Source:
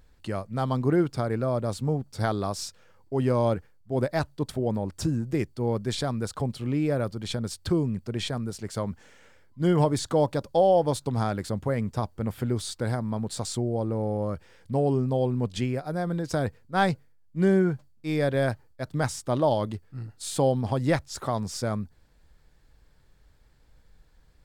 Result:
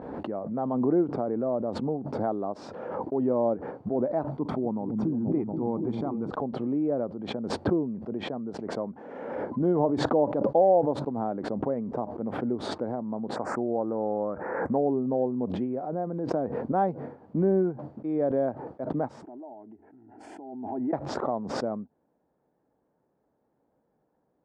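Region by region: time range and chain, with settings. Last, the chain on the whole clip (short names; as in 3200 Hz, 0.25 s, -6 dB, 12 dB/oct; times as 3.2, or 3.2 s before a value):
4.32–6.3 comb 0.9 ms, depth 48% + repeats that get brighter 0.239 s, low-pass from 200 Hz, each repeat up 1 oct, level -6 dB
13.36–14.78 Chebyshev band-stop 1800–6700 Hz + bell 1600 Hz +10 dB 1.9 oct
19.23–20.93 block floating point 7-bit + compressor 4:1, threshold -39 dBFS + fixed phaser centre 780 Hz, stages 8
whole clip: Chebyshev band-pass 240–790 Hz, order 2; backwards sustainer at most 34 dB/s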